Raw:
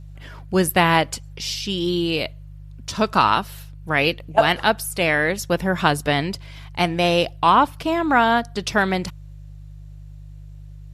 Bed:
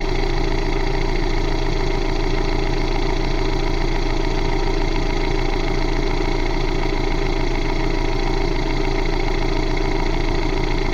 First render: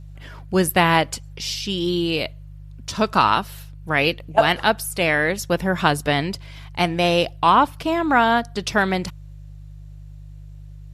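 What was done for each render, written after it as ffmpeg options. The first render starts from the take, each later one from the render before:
-af anull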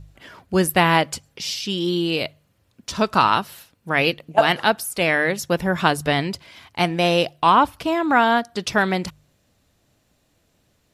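-af "bandreject=f=50:t=h:w=4,bandreject=f=100:t=h:w=4,bandreject=f=150:t=h:w=4"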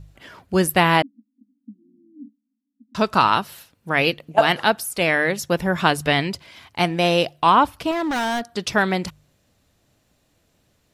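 -filter_complex "[0:a]asettb=1/sr,asplit=3[s0][s1][s2];[s0]atrim=end=1.024[s3];[s1]atrim=start=1.02:end=2.95,asetpts=PTS-STARTPTS,afade=t=in:d=0.004:c=qsin,afade=t=out:st=1.926:d=0.004:c=qsin,asuperpass=centerf=250:order=12:qfactor=3.1[s4];[s2]atrim=start=2.946[s5];[s3][s4]acrossfade=d=0.004:c1=hsin:c2=qsin[s6];[s6][s5]acrossfade=d=0.004:c1=qsin:c2=hsin,asettb=1/sr,asplit=3[s7][s8][s9];[s7]atrim=end=5.884[s10];[s8]atrim=start=5.88:end=6.3,asetpts=PTS-STARTPTS,afade=t=in:d=0.004:c=qsin,afade=t=out:st=0.416:d=0.004:c=qsin,equalizer=f=2500:t=o:w=1.1:g=4[s11];[s9]atrim=start=6.296[s12];[s10][s11]acrossfade=d=0.004:c1=hsin:c2=qsin[s13];[s13][s12]acrossfade=d=0.004:c1=qsin:c2=hsin,asettb=1/sr,asplit=3[s14][s15][s16];[s14]atrim=end=7.914[s17];[s15]atrim=start=7.91:end=8.55,asetpts=PTS-STARTPTS,afade=t=in:d=0.004:c=qsin,afade=t=out:st=0.636:d=0.004:c=qsin,asoftclip=type=hard:threshold=0.0891[s18];[s16]atrim=start=8.546[s19];[s17][s18]acrossfade=d=0.004:c1=hsin:c2=qsin[s20];[s20][s19]acrossfade=d=0.004:c1=qsin:c2=hsin"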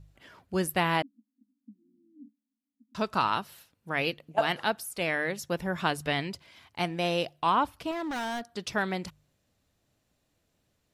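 -af "volume=0.316"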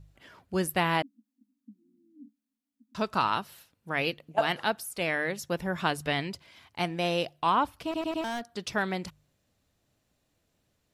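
-filter_complex "[0:a]asplit=5[s0][s1][s2][s3][s4];[s0]atrim=end=7.942[s5];[s1]atrim=start=7.838:end=7.942[s6];[s2]atrim=start=7.838:end=7.942[s7];[s3]atrim=start=7.838:end=7.942[s8];[s4]atrim=start=8.238[s9];[s5][s6]acrossfade=d=0.004:c1=hsin:c2=hsin[s10];[s10][s7]acrossfade=d=0.004:c1=hsin:c2=hsin[s11];[s11][s8]acrossfade=d=0.004:c1=hsin:c2=hsin[s12];[s12][s9]acrossfade=d=0.004:c1=hsin:c2=hsin"

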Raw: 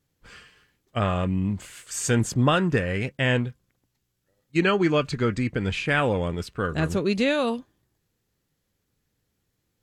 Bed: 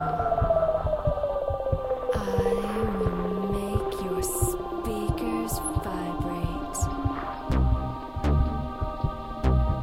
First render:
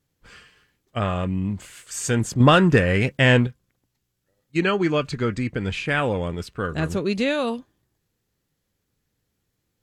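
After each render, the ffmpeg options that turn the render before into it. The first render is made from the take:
-filter_complex "[0:a]asettb=1/sr,asplit=3[s0][s1][s2];[s0]atrim=end=2.404[s3];[s1]atrim=start=2.4:end=3.47,asetpts=PTS-STARTPTS,afade=t=in:d=0.004:c=qsin,afade=t=out:st=1.066:d=0.004:c=qsin,acontrast=77[s4];[s2]atrim=start=3.466[s5];[s3][s4]acrossfade=d=0.004:c1=hsin:c2=qsin[s6];[s6][s5]acrossfade=d=0.004:c1=qsin:c2=hsin"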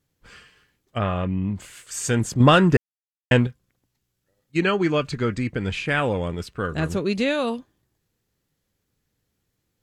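-filter_complex "[0:a]asettb=1/sr,asplit=3[s0][s1][s2];[s0]atrim=end=0.984[s3];[s1]atrim=start=0.98:end=1.56,asetpts=PTS-STARTPTS,afade=t=in:d=0.004:c=qsin,afade=t=out:st=0.576:d=0.004:c=qsin,lowpass=3600[s4];[s2]atrim=start=1.556[s5];[s3][s4]acrossfade=d=0.004:c1=hsin:c2=qsin[s6];[s6][s5]acrossfade=d=0.004:c1=qsin:c2=hsin,asplit=3[s7][s8][s9];[s7]atrim=end=2.77,asetpts=PTS-STARTPTS,afade=t=out:st=2.766:d=0.004:c=hsin[s10];[s8]atrim=start=2.77:end=3.31,asetpts=PTS-STARTPTS,volume=0[s11];[s9]atrim=start=3.31,asetpts=PTS-STARTPTS,afade=t=in:d=0.004:c=hsin[s12];[s10][s11][s12]concat=n=3:v=0:a=1"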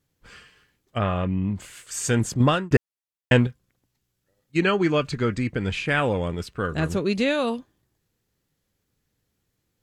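-filter_complex "[0:a]asplit=2[s0][s1];[s0]atrim=end=2.71,asetpts=PTS-STARTPTS,afade=t=out:st=2.3:d=0.41[s2];[s1]atrim=start=2.71,asetpts=PTS-STARTPTS,afade=t=in:d=0.004:c=hsin[s3];[s2][s3]concat=n=2:v=0:a=1"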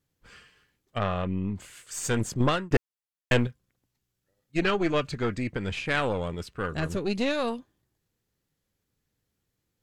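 -af "aeval=exprs='(tanh(5.01*val(0)+0.75)-tanh(0.75))/5.01':c=same"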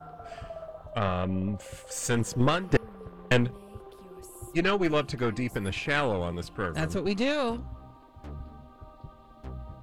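-filter_complex "[1:a]volume=0.126[s0];[0:a][s0]amix=inputs=2:normalize=0"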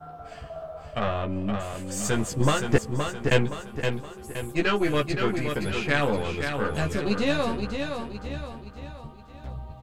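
-filter_complex "[0:a]asplit=2[s0][s1];[s1]adelay=14,volume=0.708[s2];[s0][s2]amix=inputs=2:normalize=0,aecho=1:1:519|1038|1557|2076|2595:0.501|0.221|0.097|0.0427|0.0188"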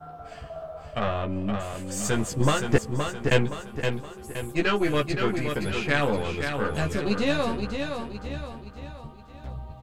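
-af anull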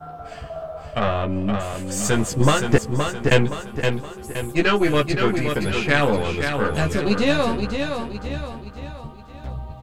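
-af "volume=1.88,alimiter=limit=0.794:level=0:latency=1"

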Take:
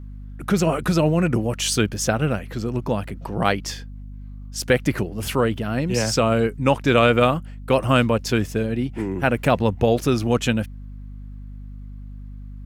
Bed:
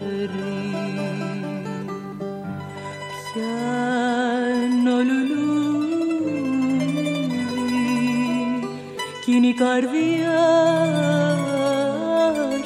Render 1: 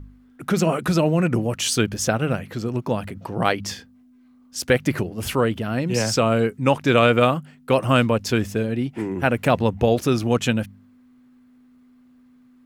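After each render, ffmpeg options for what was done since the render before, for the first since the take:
-af "bandreject=f=50:t=h:w=4,bandreject=f=100:t=h:w=4,bandreject=f=150:t=h:w=4,bandreject=f=200:t=h:w=4"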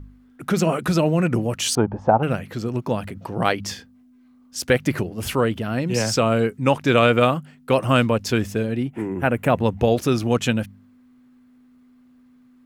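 -filter_complex "[0:a]asettb=1/sr,asplit=3[s0][s1][s2];[s0]atrim=end=1.754[s3];[s1]atrim=start=1.75:end=2.23,asetpts=PTS-STARTPTS,afade=t=in:d=0.004:c=qsin,afade=t=out:st=0.476:d=0.004:c=qsin,lowpass=f=870:t=q:w=7.5[s4];[s2]atrim=start=2.226[s5];[s3][s4]acrossfade=d=0.004:c1=hsin:c2=qsin[s6];[s6][s5]acrossfade=d=0.004:c1=qsin:c2=hsin,asettb=1/sr,asplit=3[s7][s8][s9];[s7]atrim=end=8.834[s10];[s8]atrim=start=8.83:end=9.64,asetpts=PTS-STARTPTS,afade=t=in:d=0.004:c=qsin,afade=t=out:st=0.806:d=0.004:c=qsin,equalizer=f=4700:w=1.3:g=-11.5[s11];[s9]atrim=start=9.636[s12];[s10][s11]acrossfade=d=0.004:c1=hsin:c2=qsin[s13];[s13][s12]acrossfade=d=0.004:c1=qsin:c2=hsin"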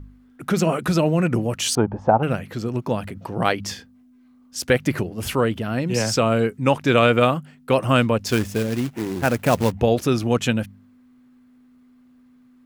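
-filter_complex "[0:a]asettb=1/sr,asplit=3[s0][s1][s2];[s0]atrim=end=8.264[s3];[s1]atrim=start=8.26:end=9.72,asetpts=PTS-STARTPTS,afade=t=in:d=0.004:c=qsin,afade=t=out:st=1.456:d=0.004:c=qsin,acrusher=bits=3:mode=log:mix=0:aa=0.000001[s4];[s2]atrim=start=9.716[s5];[s3][s4]acrossfade=d=0.004:c1=hsin:c2=qsin[s6];[s6][s5]acrossfade=d=0.004:c1=qsin:c2=hsin"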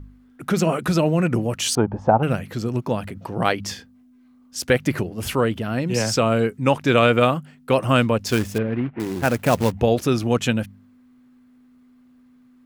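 -filter_complex "[0:a]asettb=1/sr,asplit=3[s0][s1][s2];[s0]atrim=end=1.934[s3];[s1]atrim=start=1.93:end=2.81,asetpts=PTS-STARTPTS,afade=t=in:d=0.004:c=qsin,afade=t=out:st=0.876:d=0.004:c=qsin,bass=f=250:g=2,treble=f=4000:g=3[s4];[s2]atrim=start=2.806[s5];[s3][s4]acrossfade=d=0.004:c1=hsin:c2=qsin[s6];[s6][s5]acrossfade=d=0.004:c1=qsin:c2=hsin,asettb=1/sr,asplit=3[s7][s8][s9];[s7]atrim=end=8.584[s10];[s8]atrim=start=8.58:end=9,asetpts=PTS-STARTPTS,afade=t=in:d=0.004:c=qsin,afade=t=out:st=0.416:d=0.004:c=qsin,lowpass=f=2400:w=0.5412,lowpass=f=2400:w=1.3066[s11];[s9]atrim=start=8.996[s12];[s10][s11]acrossfade=d=0.004:c1=hsin:c2=qsin[s13];[s13][s12]acrossfade=d=0.004:c1=qsin:c2=hsin"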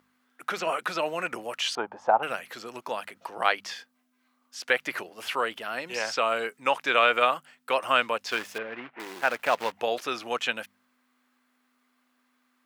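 -filter_complex "[0:a]highpass=840,acrossover=split=4200[s0][s1];[s1]acompressor=threshold=0.00501:ratio=4:attack=1:release=60[s2];[s0][s2]amix=inputs=2:normalize=0"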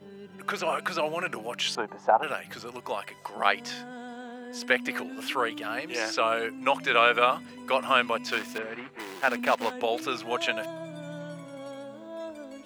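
-filter_complex "[1:a]volume=0.1[s0];[0:a][s0]amix=inputs=2:normalize=0"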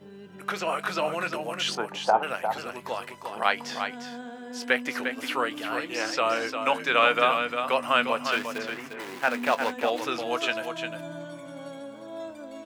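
-filter_complex "[0:a]asplit=2[s0][s1];[s1]adelay=21,volume=0.211[s2];[s0][s2]amix=inputs=2:normalize=0,aecho=1:1:352:0.447"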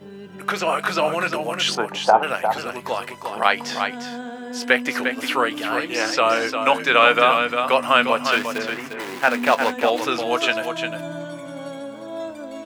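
-af "volume=2.24,alimiter=limit=0.794:level=0:latency=1"

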